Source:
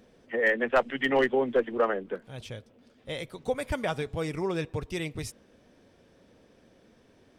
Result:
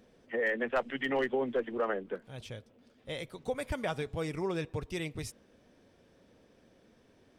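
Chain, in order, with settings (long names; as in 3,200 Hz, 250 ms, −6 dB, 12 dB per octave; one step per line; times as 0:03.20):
brickwall limiter −19 dBFS, peak gain reduction 4 dB
level −3.5 dB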